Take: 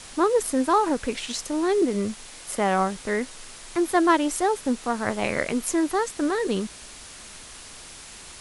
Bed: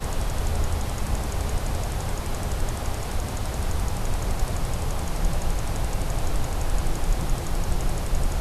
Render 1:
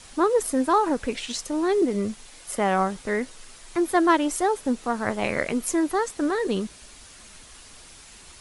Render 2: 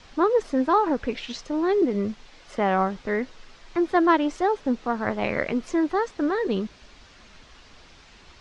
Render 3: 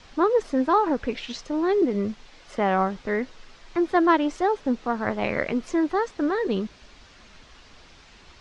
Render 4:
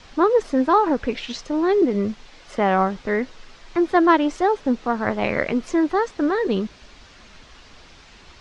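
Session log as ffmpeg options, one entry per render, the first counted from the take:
-af "afftdn=nr=6:nf=-43"
-af "lowpass=f=5.8k:w=0.5412,lowpass=f=5.8k:w=1.3066,aemphasis=mode=reproduction:type=cd"
-af anull
-af "volume=3.5dB"

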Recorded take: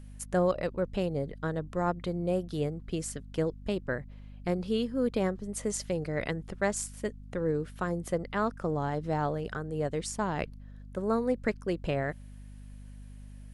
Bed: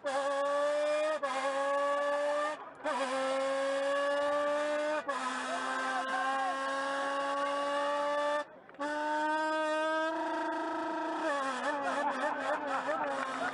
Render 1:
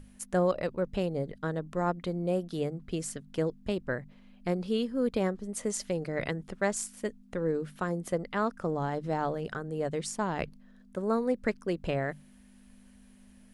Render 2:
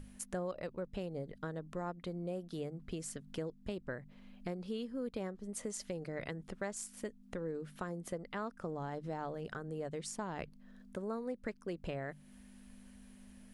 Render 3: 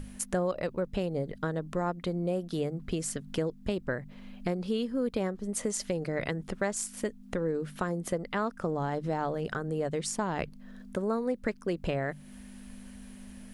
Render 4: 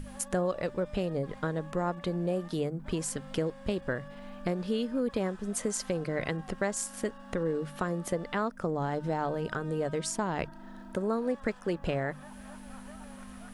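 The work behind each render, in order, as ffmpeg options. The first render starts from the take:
-af "bandreject=f=50:t=h:w=6,bandreject=f=100:t=h:w=6,bandreject=f=150:t=h:w=6"
-af "acompressor=threshold=-42dB:ratio=2.5"
-af "volume=9.5dB"
-filter_complex "[1:a]volume=-18.5dB[a];[0:a][a]amix=inputs=2:normalize=0"

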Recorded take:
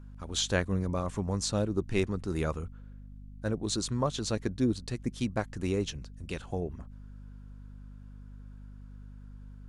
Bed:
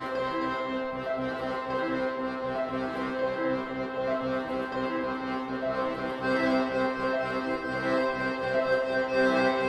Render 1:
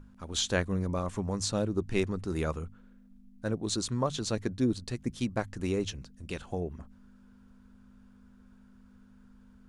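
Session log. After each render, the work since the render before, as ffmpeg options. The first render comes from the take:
-af "bandreject=f=50:t=h:w=6,bandreject=f=100:t=h:w=6,bandreject=f=150:t=h:w=6"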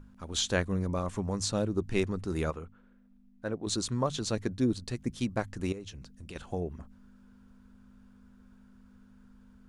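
-filter_complex "[0:a]asettb=1/sr,asplit=3[a][b][c];[a]atrim=end=2.504[d];[b]atrim=start=2.5:end=3.67,asetpts=PTS-STARTPTS,afade=t=in:d=0.004:c=qsin,afade=t=out:st=1.166:d=0.004:c=qsin,bass=f=250:g=-7,treble=f=4k:g=-10[e];[c]atrim=start=3.666[f];[d][e]acrossfade=d=0.004:c1=hsin:c2=qsin[g];[g][f]acrossfade=d=0.004:c1=qsin:c2=hsin,asettb=1/sr,asplit=3[h][i][j];[h]atrim=end=5.724[k];[i]atrim=start=5.72:end=6.36,asetpts=PTS-STARTPTS,afade=t=in:d=0.004:c=qsin,afade=t=out:st=0.636:d=0.004:c=qsin,acompressor=threshold=-41dB:ratio=4:attack=3.2:release=140:knee=1:detection=peak[l];[j]atrim=start=6.356[m];[k][l]acrossfade=d=0.004:c1=hsin:c2=qsin[n];[n][m]acrossfade=d=0.004:c1=qsin:c2=hsin"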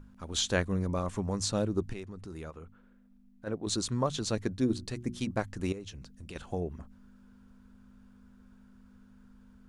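-filter_complex "[0:a]asplit=3[a][b][c];[a]afade=t=out:st=1.92:d=0.02[d];[b]acompressor=threshold=-44dB:ratio=2.5:attack=3.2:release=140:knee=1:detection=peak,afade=t=in:st=1.92:d=0.02,afade=t=out:st=3.46:d=0.02[e];[c]afade=t=in:st=3.46:d=0.02[f];[d][e][f]amix=inputs=3:normalize=0,asettb=1/sr,asplit=3[g][h][i];[g]atrim=end=4.564[j];[h]atrim=start=4.56:end=5.31,asetpts=PTS-STARTPTS,afade=t=in:d=0.004:c=qsin,afade=t=out:st=0.746:d=0.004:c=qsin,bandreject=f=60:t=h:w=6,bandreject=f=120:t=h:w=6,bandreject=f=180:t=h:w=6,bandreject=f=240:t=h:w=6,bandreject=f=300:t=h:w=6,bandreject=f=360:t=h:w=6[k];[i]atrim=start=5.306[l];[j][k]acrossfade=d=0.004:c1=hsin:c2=qsin[m];[m][l]acrossfade=d=0.004:c1=qsin:c2=hsin"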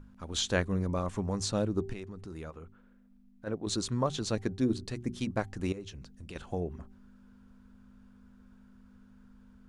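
-af "highshelf=f=6.6k:g=-4.5,bandreject=f=388.8:t=h:w=4,bandreject=f=777.6:t=h:w=4"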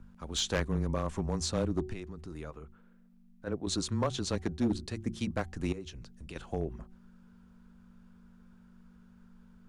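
-af "afreqshift=-18,asoftclip=type=hard:threshold=-22.5dB"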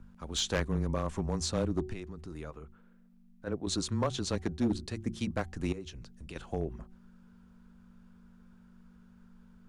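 -af anull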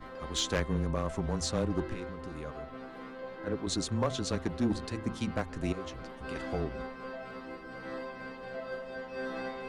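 -filter_complex "[1:a]volume=-13.5dB[a];[0:a][a]amix=inputs=2:normalize=0"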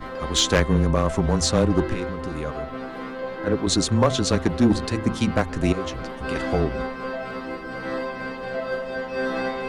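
-af "volume=11.5dB"

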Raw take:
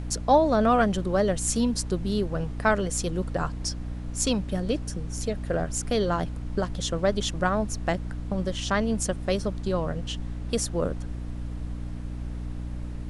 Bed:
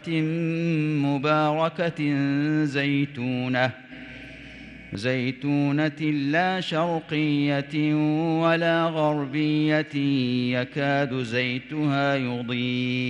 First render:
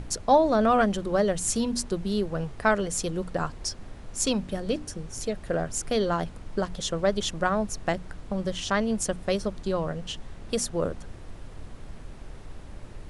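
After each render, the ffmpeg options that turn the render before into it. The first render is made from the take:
-af "bandreject=f=60:t=h:w=6,bandreject=f=120:t=h:w=6,bandreject=f=180:t=h:w=6,bandreject=f=240:t=h:w=6,bandreject=f=300:t=h:w=6"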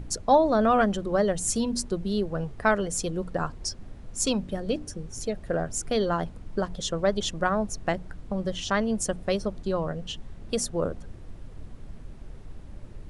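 -af "afftdn=nr=7:nf=-43"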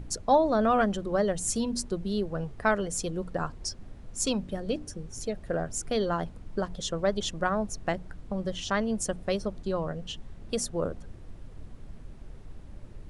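-af "volume=-2.5dB"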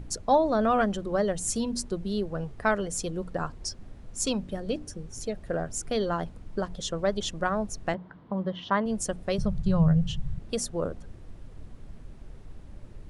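-filter_complex "[0:a]asettb=1/sr,asplit=3[a][b][c];[a]atrim=end=7.944[d];[b]atrim=start=7.94:end=8.86,asetpts=PTS-STARTPTS,afade=t=in:d=0.004:c=qsin,afade=t=out:st=0.916:d=0.004:c=qsin,highpass=150,equalizer=f=180:t=q:w=4:g=5,equalizer=f=1k:t=q:w=4:g=9,equalizer=f=2.5k:t=q:w=4:g=-7,lowpass=f=3.4k:w=0.5412,lowpass=f=3.4k:w=1.3066[e];[c]atrim=start=8.856[f];[d][e]acrossfade=d=0.004:c1=hsin:c2=qsin[g];[g][f]acrossfade=d=0.004:c1=qsin:c2=hsin,asettb=1/sr,asplit=3[h][i][j];[h]atrim=end=9.384[k];[i]atrim=start=9.38:end=10.39,asetpts=PTS-STARTPTS,afade=t=in:d=0.004:c=qsin,afade=t=out:st=1.006:d=0.004:c=qsin,lowshelf=f=210:t=q:w=3:g=11[l];[j]atrim=start=10.386[m];[k][l]acrossfade=d=0.004:c1=hsin:c2=qsin[n];[n][m]acrossfade=d=0.004:c1=qsin:c2=hsin"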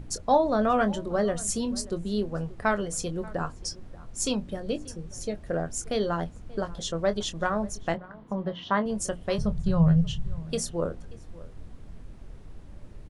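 -filter_complex "[0:a]asplit=2[a][b];[b]adelay=24,volume=-10.5dB[c];[a][c]amix=inputs=2:normalize=0,asplit=2[d][e];[e]adelay=583.1,volume=-20dB,highshelf=f=4k:g=-13.1[f];[d][f]amix=inputs=2:normalize=0"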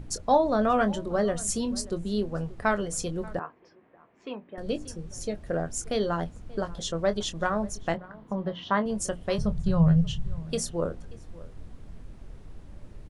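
-filter_complex "[0:a]asettb=1/sr,asplit=3[a][b][c];[a]atrim=end=3.394[d];[b]atrim=start=3.39:end=4.58,asetpts=PTS-STARTPTS,afade=t=in:d=0.004:c=qsin,afade=t=out:st=1.186:d=0.004:c=qsin,highpass=440,equalizer=f=550:t=q:w=4:g=-6,equalizer=f=810:t=q:w=4:g=-4,equalizer=f=1.4k:t=q:w=4:g=-7,lowpass=f=2.2k:w=0.5412,lowpass=f=2.2k:w=1.3066[e];[c]atrim=start=4.576[f];[d][e]acrossfade=d=0.004:c1=hsin:c2=qsin[g];[g][f]acrossfade=d=0.004:c1=qsin:c2=hsin"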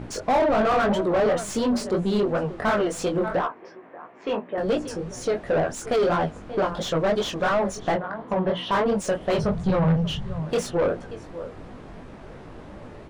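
-filter_complex "[0:a]flanger=delay=15.5:depth=6.1:speed=2.9,asplit=2[a][b];[b]highpass=f=720:p=1,volume=29dB,asoftclip=type=tanh:threshold=-12dB[c];[a][c]amix=inputs=2:normalize=0,lowpass=f=1.1k:p=1,volume=-6dB"

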